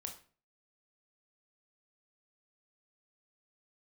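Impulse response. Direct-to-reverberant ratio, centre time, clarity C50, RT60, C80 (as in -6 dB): 3.0 dB, 15 ms, 10.5 dB, 0.40 s, 15.0 dB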